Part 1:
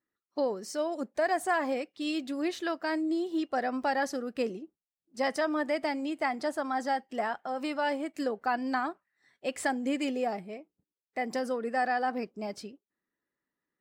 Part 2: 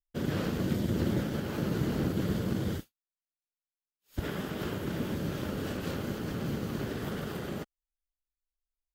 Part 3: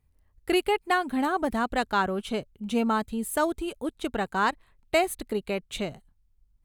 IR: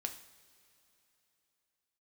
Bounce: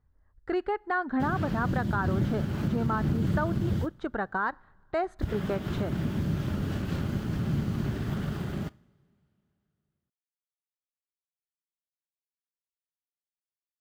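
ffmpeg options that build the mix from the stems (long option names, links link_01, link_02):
-filter_complex "[1:a]equalizer=frequency=490:width=4.6:gain=-9,acrusher=bits=7:mix=0:aa=0.5,firequalizer=gain_entry='entry(130,0);entry(280,-8);entry(11000,-16)':delay=0.05:min_phase=1,adelay=1050,volume=-0.5dB,asplit=2[link_01][link_02];[link_02]volume=-3.5dB[link_03];[2:a]lowpass=frequency=5500:width=0.5412,lowpass=frequency=5500:width=1.3066,highshelf=frequency=2000:width_type=q:width=3:gain=-8,volume=-8dB,asplit=2[link_04][link_05];[link_05]volume=-16dB[link_06];[link_01][link_04]amix=inputs=2:normalize=0,acontrast=86,alimiter=limit=-20.5dB:level=0:latency=1:release=186,volume=0dB[link_07];[3:a]atrim=start_sample=2205[link_08];[link_03][link_06]amix=inputs=2:normalize=0[link_09];[link_09][link_08]afir=irnorm=-1:irlink=0[link_10];[link_07][link_10]amix=inputs=2:normalize=0"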